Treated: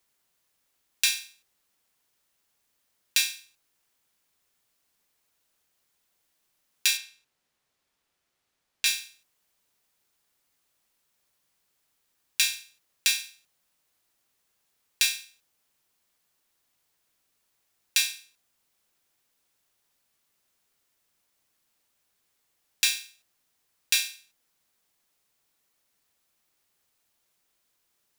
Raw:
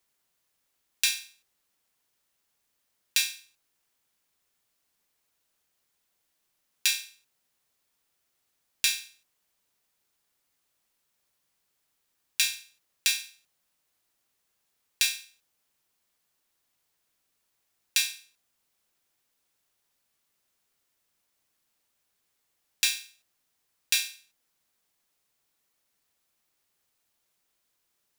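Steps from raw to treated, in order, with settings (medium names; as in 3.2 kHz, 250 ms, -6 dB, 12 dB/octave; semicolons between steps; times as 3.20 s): 6.97–8.86 s: treble shelf 7.3 kHz -11 dB; in parallel at -11 dB: saturation -20 dBFS, distortion -10 dB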